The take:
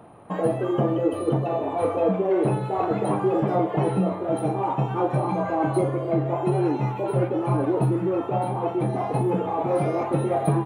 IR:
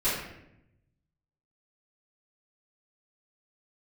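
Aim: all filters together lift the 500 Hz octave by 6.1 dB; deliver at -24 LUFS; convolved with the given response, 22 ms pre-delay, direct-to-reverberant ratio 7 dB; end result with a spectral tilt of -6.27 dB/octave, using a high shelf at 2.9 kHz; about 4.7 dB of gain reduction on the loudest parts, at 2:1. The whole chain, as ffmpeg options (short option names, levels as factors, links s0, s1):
-filter_complex "[0:a]equalizer=f=500:t=o:g=7.5,highshelf=f=2900:g=7,acompressor=threshold=0.1:ratio=2,asplit=2[s0][s1];[1:a]atrim=start_sample=2205,adelay=22[s2];[s1][s2]afir=irnorm=-1:irlink=0,volume=0.126[s3];[s0][s3]amix=inputs=2:normalize=0,volume=0.75"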